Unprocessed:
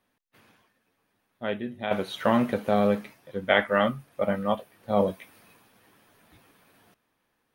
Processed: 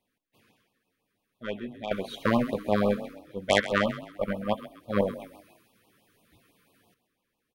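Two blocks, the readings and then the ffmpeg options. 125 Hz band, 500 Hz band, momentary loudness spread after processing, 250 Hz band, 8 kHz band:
-0.5 dB, -2.5 dB, 14 LU, -2.0 dB, n/a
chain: -filter_complex "[0:a]aeval=exprs='0.596*(cos(1*acos(clip(val(0)/0.596,-1,1)))-cos(1*PI/2))+0.15*(cos(4*acos(clip(val(0)/0.596,-1,1)))-cos(4*PI/2))+0.0944*(cos(6*acos(clip(val(0)/0.596,-1,1)))-cos(6*PI/2))+0.0335*(cos(7*acos(clip(val(0)/0.596,-1,1)))-cos(7*PI/2))':c=same,asplit=5[a][b][c][d][e];[b]adelay=131,afreqshift=35,volume=-14dB[f];[c]adelay=262,afreqshift=70,volume=-22.2dB[g];[d]adelay=393,afreqshift=105,volume=-30.4dB[h];[e]adelay=524,afreqshift=140,volume=-38.5dB[i];[a][f][g][h][i]amix=inputs=5:normalize=0,afftfilt=real='re*(1-between(b*sr/1024,690*pow(1800/690,0.5+0.5*sin(2*PI*6*pts/sr))/1.41,690*pow(1800/690,0.5+0.5*sin(2*PI*6*pts/sr))*1.41))':imag='im*(1-between(b*sr/1024,690*pow(1800/690,0.5+0.5*sin(2*PI*6*pts/sr))/1.41,690*pow(1800/690,0.5+0.5*sin(2*PI*6*pts/sr))*1.41))':win_size=1024:overlap=0.75"

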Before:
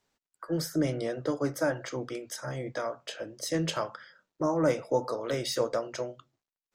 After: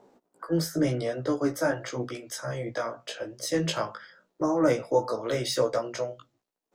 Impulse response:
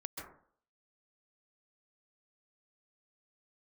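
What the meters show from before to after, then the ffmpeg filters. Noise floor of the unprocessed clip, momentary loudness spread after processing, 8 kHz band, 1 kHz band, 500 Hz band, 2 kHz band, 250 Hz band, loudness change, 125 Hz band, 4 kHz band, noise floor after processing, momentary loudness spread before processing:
under -85 dBFS, 11 LU, +2.5 dB, +2.5 dB, +2.5 dB, +2.5 dB, +3.0 dB, +3.0 dB, +2.5 dB, +2.5 dB, -81 dBFS, 11 LU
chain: -filter_complex "[0:a]acrossover=split=190|830|6900[a][b][c][d];[b]acompressor=mode=upward:threshold=-43dB:ratio=2.5[e];[a][e][c][d]amix=inputs=4:normalize=0,flanger=delay=15.5:depth=2.6:speed=0.89,volume=5.5dB"

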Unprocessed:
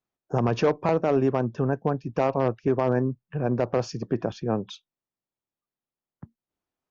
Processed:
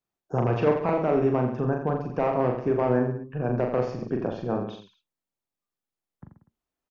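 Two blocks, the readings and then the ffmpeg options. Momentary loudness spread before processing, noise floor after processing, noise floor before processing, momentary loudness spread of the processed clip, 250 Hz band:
7 LU, under -85 dBFS, under -85 dBFS, 7 LU, -0.5 dB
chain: -filter_complex "[0:a]acrossover=split=3000[a][b];[b]acompressor=threshold=-59dB:ratio=4:attack=1:release=60[c];[a][c]amix=inputs=2:normalize=0,asubboost=boost=3:cutoff=55,asplit=2[d][e];[e]aecho=0:1:40|84|132.4|185.6|244.2:0.631|0.398|0.251|0.158|0.1[f];[d][f]amix=inputs=2:normalize=0,volume=-2dB"

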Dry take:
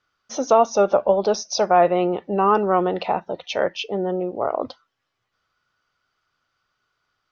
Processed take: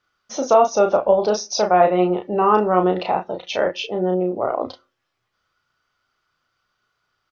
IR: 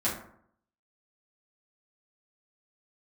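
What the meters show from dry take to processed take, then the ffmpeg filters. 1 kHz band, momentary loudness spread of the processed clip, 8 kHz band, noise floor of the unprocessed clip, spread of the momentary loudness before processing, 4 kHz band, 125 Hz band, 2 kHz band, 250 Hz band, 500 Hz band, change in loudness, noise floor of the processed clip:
+1.5 dB, 10 LU, n/a, -77 dBFS, 10 LU, +1.5 dB, +3.0 dB, +1.5 dB, +2.5 dB, +1.5 dB, +1.5 dB, -75 dBFS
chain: -filter_complex "[0:a]asplit=2[a][b];[b]adelay=33,volume=-5dB[c];[a][c]amix=inputs=2:normalize=0,asplit=2[d][e];[1:a]atrim=start_sample=2205,asetrate=70560,aresample=44100[f];[e][f]afir=irnorm=-1:irlink=0,volume=-26dB[g];[d][g]amix=inputs=2:normalize=0"

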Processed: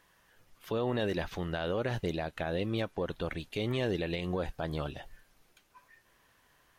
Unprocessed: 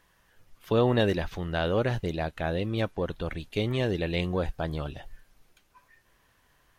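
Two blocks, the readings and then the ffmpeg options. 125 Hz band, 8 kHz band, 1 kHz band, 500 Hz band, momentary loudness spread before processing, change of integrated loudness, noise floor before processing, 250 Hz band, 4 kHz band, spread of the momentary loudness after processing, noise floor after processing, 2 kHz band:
-6.5 dB, n/a, -5.0 dB, -5.0 dB, 9 LU, -5.5 dB, -66 dBFS, -5.0 dB, -4.5 dB, 5 LU, -68 dBFS, -4.5 dB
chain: -af "lowshelf=f=110:g=-8,alimiter=limit=-22.5dB:level=0:latency=1:release=96"

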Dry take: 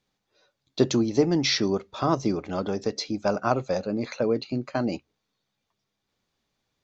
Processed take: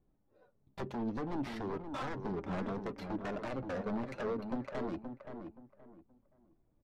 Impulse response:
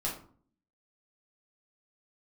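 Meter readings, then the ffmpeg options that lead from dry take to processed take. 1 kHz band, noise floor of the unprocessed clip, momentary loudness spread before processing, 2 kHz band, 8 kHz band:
-11.0 dB, -81 dBFS, 8 LU, -10.5 dB, n/a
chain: -filter_complex "[0:a]lowshelf=f=110:g=6,asplit=2[a][b];[b]alimiter=limit=-16.5dB:level=0:latency=1:release=39,volume=-2dB[c];[a][c]amix=inputs=2:normalize=0,acompressor=threshold=-30dB:ratio=12,aresample=16000,aeval=exprs='0.0251*(abs(mod(val(0)/0.0251+3,4)-2)-1)':c=same,aresample=44100,adynamicsmooth=sensitivity=6:basefreq=620,flanger=delay=2.7:depth=2.5:regen=46:speed=0.61:shape=triangular,asplit=2[d][e];[e]adelay=524,lowpass=f=1.6k:p=1,volume=-7dB,asplit=2[f][g];[g]adelay=524,lowpass=f=1.6k:p=1,volume=0.27,asplit=2[h][i];[i]adelay=524,lowpass=f=1.6k:p=1,volume=0.27[j];[d][f][h][j]amix=inputs=4:normalize=0,volume=4.5dB"

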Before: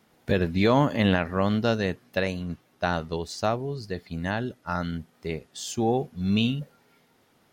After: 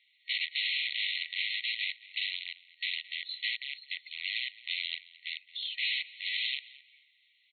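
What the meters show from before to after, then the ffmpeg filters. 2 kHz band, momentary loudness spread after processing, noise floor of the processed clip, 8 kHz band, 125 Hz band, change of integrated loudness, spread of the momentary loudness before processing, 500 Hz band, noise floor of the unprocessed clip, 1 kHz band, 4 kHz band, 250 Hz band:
-0.5 dB, 9 LU, -69 dBFS, under -40 dB, under -40 dB, -6.5 dB, 13 LU, under -40 dB, -64 dBFS, under -40 dB, +5.0 dB, under -40 dB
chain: -filter_complex "[0:a]aeval=exprs='(mod(17.8*val(0)+1,2)-1)/17.8':c=same,asplit=2[a][b];[b]adelay=218,lowpass=f=3.3k:p=1,volume=-17.5dB,asplit=2[c][d];[d]adelay=218,lowpass=f=3.3k:p=1,volume=0.33,asplit=2[e][f];[f]adelay=218,lowpass=f=3.3k:p=1,volume=0.33[g];[a][c][e][g]amix=inputs=4:normalize=0,afftfilt=real='re*between(b*sr/4096,1900,4300)':imag='im*between(b*sr/4096,1900,4300)':win_size=4096:overlap=0.75,volume=4dB"

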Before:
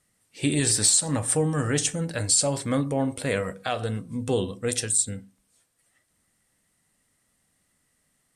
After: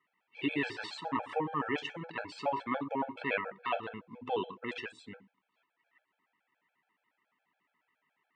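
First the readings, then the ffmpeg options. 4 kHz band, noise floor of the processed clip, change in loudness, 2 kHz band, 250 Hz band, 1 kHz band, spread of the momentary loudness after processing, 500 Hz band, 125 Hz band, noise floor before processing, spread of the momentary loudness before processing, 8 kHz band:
-14.0 dB, -83 dBFS, -12.0 dB, -3.0 dB, -10.5 dB, -0.5 dB, 11 LU, -9.5 dB, -21.0 dB, -71 dBFS, 10 LU, under -40 dB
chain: -af "highpass=390,equalizer=f=520:t=q:w=4:g=-8,equalizer=f=960:t=q:w=4:g=10,equalizer=f=2.5k:t=q:w=4:g=4,lowpass=f=2.8k:w=0.5412,lowpass=f=2.8k:w=1.3066,afftfilt=real='re*gt(sin(2*PI*7.1*pts/sr)*(1-2*mod(floor(b*sr/1024/440),2)),0)':imag='im*gt(sin(2*PI*7.1*pts/sr)*(1-2*mod(floor(b*sr/1024/440),2)),0)':win_size=1024:overlap=0.75"

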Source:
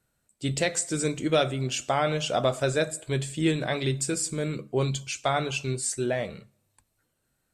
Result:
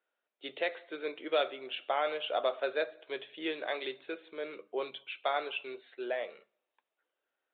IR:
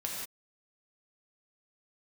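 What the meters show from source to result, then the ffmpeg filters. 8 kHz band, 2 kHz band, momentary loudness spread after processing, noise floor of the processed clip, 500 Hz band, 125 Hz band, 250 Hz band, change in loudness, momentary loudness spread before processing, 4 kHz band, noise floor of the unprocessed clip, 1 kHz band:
under -40 dB, -5.5 dB, 11 LU, under -85 dBFS, -6.5 dB, under -40 dB, -15.5 dB, -8.5 dB, 5 LU, -7.0 dB, -76 dBFS, -5.5 dB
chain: -af "highpass=f=400:w=0.5412,highpass=f=400:w=1.3066,aresample=8000,aresample=44100,volume=-5.5dB"

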